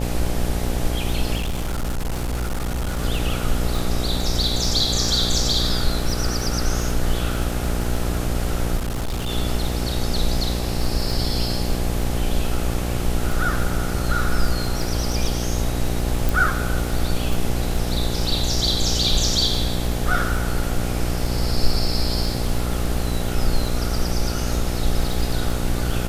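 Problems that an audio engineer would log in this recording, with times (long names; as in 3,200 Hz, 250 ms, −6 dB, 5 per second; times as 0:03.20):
mains buzz 60 Hz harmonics 14 −25 dBFS
surface crackle 14 per second −24 dBFS
0:01.36–0:03.00: clipping −20.5 dBFS
0:08.77–0:09.30: clipping −21 dBFS
0:16.29: click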